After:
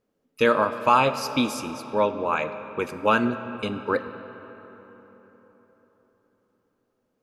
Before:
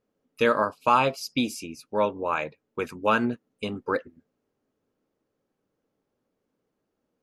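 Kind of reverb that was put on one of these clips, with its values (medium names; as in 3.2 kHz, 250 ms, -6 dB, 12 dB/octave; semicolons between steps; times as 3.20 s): algorithmic reverb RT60 4.3 s, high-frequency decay 0.55×, pre-delay 0 ms, DRR 10.5 dB; trim +2 dB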